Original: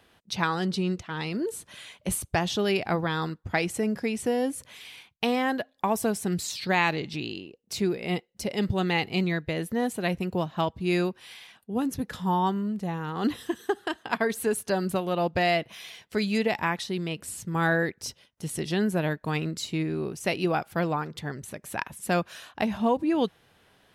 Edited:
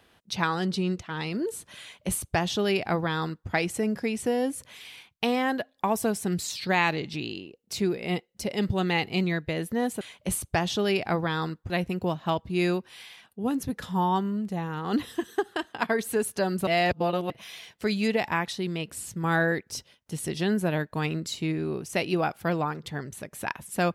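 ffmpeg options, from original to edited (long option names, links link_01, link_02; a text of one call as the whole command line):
ffmpeg -i in.wav -filter_complex "[0:a]asplit=5[link_01][link_02][link_03][link_04][link_05];[link_01]atrim=end=10.012[link_06];[link_02]atrim=start=1.808:end=3.502[link_07];[link_03]atrim=start=10.008:end=14.982[link_08];[link_04]atrim=start=14.978:end=15.612,asetpts=PTS-STARTPTS,areverse[link_09];[link_05]atrim=start=15.608[link_10];[link_06][link_07]acrossfade=duration=0.004:curve1=hsin:curve2=hsin[link_11];[link_11][link_08]acrossfade=duration=0.004:curve1=hsin:curve2=hsin[link_12];[link_12][link_09]acrossfade=duration=0.004:curve1=hsin:curve2=hsin[link_13];[link_13][link_10]acrossfade=duration=0.004:curve1=hsin:curve2=hsin" out.wav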